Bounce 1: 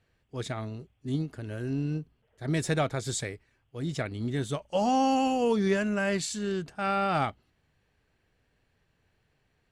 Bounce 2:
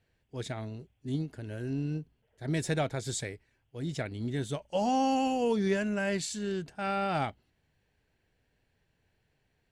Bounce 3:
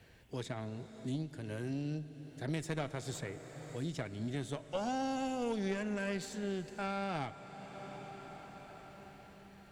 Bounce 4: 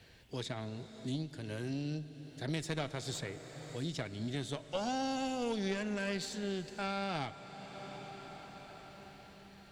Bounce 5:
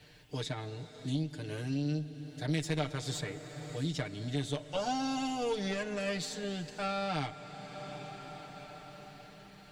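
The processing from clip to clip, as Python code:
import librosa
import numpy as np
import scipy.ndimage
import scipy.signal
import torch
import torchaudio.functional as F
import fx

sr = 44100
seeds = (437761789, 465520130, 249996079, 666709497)

y1 = fx.peak_eq(x, sr, hz=1200.0, db=-8.0, octaves=0.24)
y1 = y1 * librosa.db_to_amplitude(-2.5)
y2 = fx.cheby_harmonics(y1, sr, harmonics=(4,), levels_db=(-16,), full_scale_db=-16.0)
y2 = fx.rev_plate(y2, sr, seeds[0], rt60_s=4.7, hf_ratio=0.9, predelay_ms=0, drr_db=14.0)
y2 = fx.band_squash(y2, sr, depth_pct=70)
y2 = y2 * librosa.db_to_amplitude(-7.0)
y3 = fx.peak_eq(y2, sr, hz=4200.0, db=7.5, octaves=1.1)
y4 = y3 + 0.89 * np.pad(y3, (int(6.7 * sr / 1000.0), 0))[:len(y3)]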